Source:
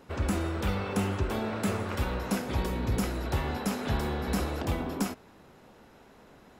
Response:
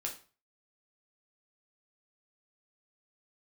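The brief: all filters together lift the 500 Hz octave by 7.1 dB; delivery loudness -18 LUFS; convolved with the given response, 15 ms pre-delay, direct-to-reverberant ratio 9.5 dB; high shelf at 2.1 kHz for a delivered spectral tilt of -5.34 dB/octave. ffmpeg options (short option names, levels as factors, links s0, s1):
-filter_complex "[0:a]equalizer=f=500:t=o:g=8.5,highshelf=f=2100:g=5,asplit=2[s0][s1];[1:a]atrim=start_sample=2205,adelay=15[s2];[s1][s2]afir=irnorm=-1:irlink=0,volume=0.316[s3];[s0][s3]amix=inputs=2:normalize=0,volume=2.99"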